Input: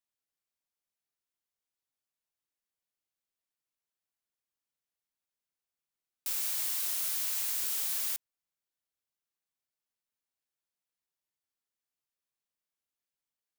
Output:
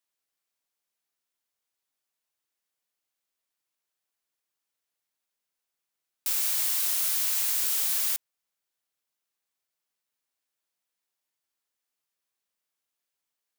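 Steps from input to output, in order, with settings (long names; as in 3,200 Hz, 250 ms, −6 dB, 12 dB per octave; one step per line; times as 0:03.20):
low-shelf EQ 200 Hz −9.5 dB
level +6 dB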